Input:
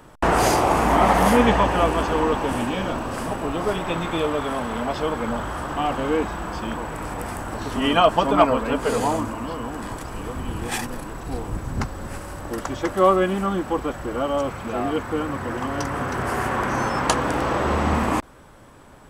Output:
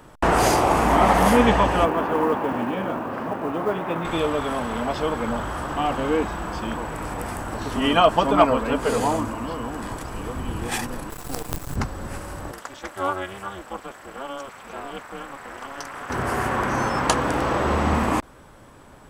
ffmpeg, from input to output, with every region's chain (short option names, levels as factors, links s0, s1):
-filter_complex "[0:a]asettb=1/sr,asplit=3[s0][s1][s2];[s0]atrim=end=1.854[s3];[s1]atrim=start=1.85:end=4.05,asetpts=PTS-STARTPTS,afade=t=in:d=0.004:c=qsin,afade=t=out:st=2.196:d=0.004:c=qsin,highpass=150,lowpass=2000,acrusher=bits=8:mode=log:mix=0:aa=0.000001[s4];[s2]atrim=start=4.046[s5];[s3][s4]acrossfade=d=0.004:c1=hsin:c2=qsin[s6];[s6][s5]acrossfade=d=0.004:c1=qsin:c2=hsin,asettb=1/sr,asplit=3[s7][s8][s9];[s7]atrim=end=11.104[s10];[s8]atrim=start=11.1:end=11.76,asetpts=PTS-STARTPTS,afade=t=in:d=0.004:c=qsin,afade=t=out:st=0.656:d=0.004:c=qsin,aemphasis=mode=production:type=50fm,aecho=1:1:6.8:0.48,atrim=end_sample=29106,acrusher=bits=4:dc=4:mix=0:aa=0.000001[s11];[s9]atrim=start=11.756[s12];[s10][s11]acrossfade=d=0.004:c1=hsin:c2=qsin[s13];[s13][s12]acrossfade=d=0.004:c1=qsin:c2=hsin,asettb=1/sr,asplit=3[s14][s15][s16];[s14]atrim=end=12.514[s17];[s15]atrim=start=12.51:end=16.1,asetpts=PTS-STARTPTS,afade=t=in:d=0.004:c=qsin,afade=t=out:st=3.586:d=0.004:c=qsin,highpass=f=970:p=1,tremolo=f=280:d=0.974[s18];[s16]atrim=start=16.096[s19];[s17][s18]acrossfade=d=0.004:c1=hsin:c2=qsin[s20];[s20][s19]acrossfade=d=0.004:c1=qsin:c2=hsin"